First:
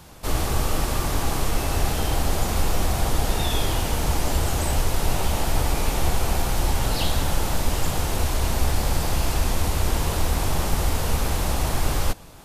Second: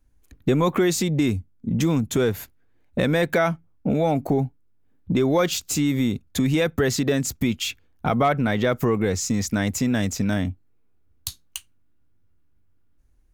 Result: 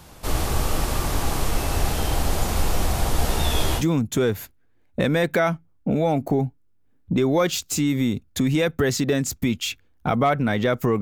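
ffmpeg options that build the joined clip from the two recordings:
ffmpeg -i cue0.wav -i cue1.wav -filter_complex "[0:a]asettb=1/sr,asplit=3[link_01][link_02][link_03];[link_01]atrim=end=3.174[link_04];[link_02]atrim=start=3.17:end=3.84,asetpts=PTS-STARTPTS,afade=type=in:duration=0.004:curve=qsin,afade=type=out:start_time=0.666:duration=0.004:curve=qsin,asplit=2[link_05][link_06];[link_06]adelay=13,volume=-6dB[link_07];[link_05][link_07]amix=inputs=2:normalize=0,atrim=end_sample=29547[link_08];[link_03]atrim=start=3.836[link_09];[link_04][link_08]acrossfade=duration=0.004:curve1=hsin:curve2=qsin[link_10];[link_10][link_09]acrossfade=duration=0.004:curve1=qsin:curve2=hsin,apad=whole_dur=11.01,atrim=end=11.01,atrim=end=3.84,asetpts=PTS-STARTPTS[link_11];[1:a]atrim=start=1.75:end=9,asetpts=PTS-STARTPTS[link_12];[link_11][link_12]acrossfade=duration=0.08:curve1=tri:curve2=tri" out.wav

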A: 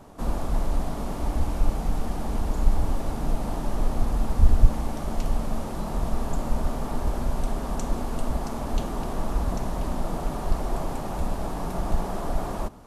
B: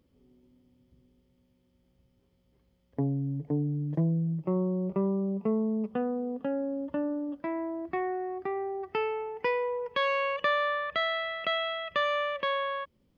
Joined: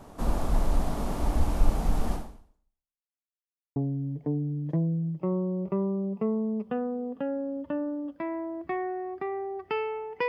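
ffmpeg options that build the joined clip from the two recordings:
ffmpeg -i cue0.wav -i cue1.wav -filter_complex "[0:a]apad=whole_dur=10.28,atrim=end=10.28,asplit=2[link_01][link_02];[link_01]atrim=end=3.05,asetpts=PTS-STARTPTS,afade=type=out:start_time=2.14:duration=0.91:curve=exp[link_03];[link_02]atrim=start=3.05:end=3.76,asetpts=PTS-STARTPTS,volume=0[link_04];[1:a]atrim=start=3:end=9.52,asetpts=PTS-STARTPTS,afade=type=in:duration=0.004:curve=hsin[link_05];[link_03][link_04][link_05]concat=n=3:v=0:a=1" out.wav

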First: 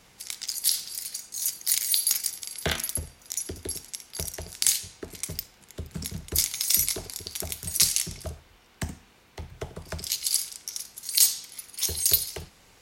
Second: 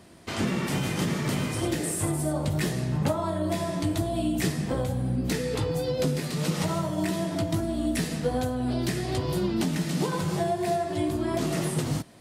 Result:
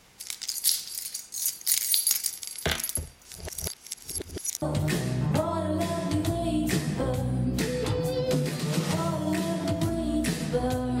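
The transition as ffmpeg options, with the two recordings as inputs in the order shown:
ffmpeg -i cue0.wav -i cue1.wav -filter_complex "[0:a]apad=whole_dur=11,atrim=end=11,asplit=2[link_01][link_02];[link_01]atrim=end=3.252[link_03];[link_02]atrim=start=3.248:end=4.622,asetpts=PTS-STARTPTS,areverse[link_04];[1:a]atrim=start=2.328:end=8.71[link_05];[link_03][link_04]acrossfade=duration=0.004:curve1=hsin:curve2=hsin[link_06];[link_06][link_05]acrossfade=duration=0.004:curve1=hsin:curve2=hsin" out.wav

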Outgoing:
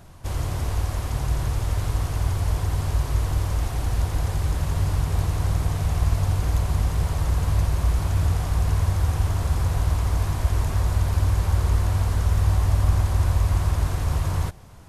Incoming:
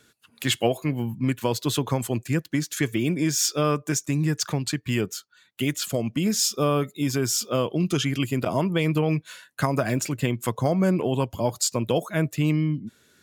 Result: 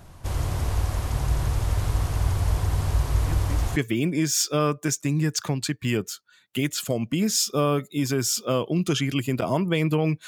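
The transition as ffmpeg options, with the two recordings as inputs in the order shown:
ffmpeg -i cue0.wav -i cue1.wav -filter_complex "[1:a]asplit=2[link_01][link_02];[0:a]apad=whole_dur=10.27,atrim=end=10.27,atrim=end=3.762[link_03];[link_02]atrim=start=2.798:end=9.31[link_04];[link_01]atrim=start=2.21:end=2.8,asetpts=PTS-STARTPTS,volume=-13.5dB,afade=type=in:duration=0.004:curve=hsin,afade=type=out:start_time=0.586:duration=0.004:curve=hsin,adelay=139797S[link_05];[link_03][link_04]acrossfade=duration=0.004:curve1=hsin:curve2=hsin[link_06];[link_06][link_05]amix=inputs=2:normalize=0" out.wav

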